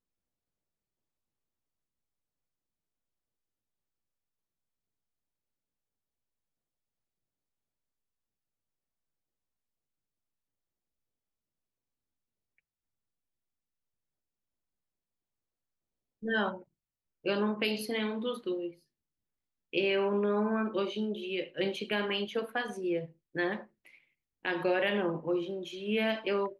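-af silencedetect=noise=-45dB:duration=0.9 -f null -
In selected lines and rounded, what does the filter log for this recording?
silence_start: 0.00
silence_end: 16.23 | silence_duration: 16.23
silence_start: 18.71
silence_end: 19.73 | silence_duration: 1.02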